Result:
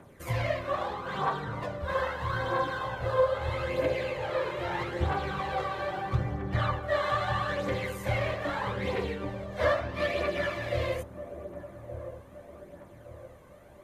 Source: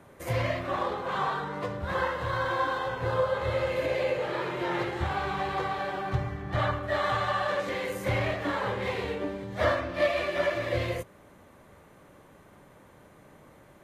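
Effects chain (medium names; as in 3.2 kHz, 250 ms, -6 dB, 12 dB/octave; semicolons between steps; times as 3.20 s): phaser 0.78 Hz, delay 2 ms, feedback 48%; on a send: feedback echo behind a low-pass 1169 ms, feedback 43%, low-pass 700 Hz, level -9 dB; on the sum: trim -3 dB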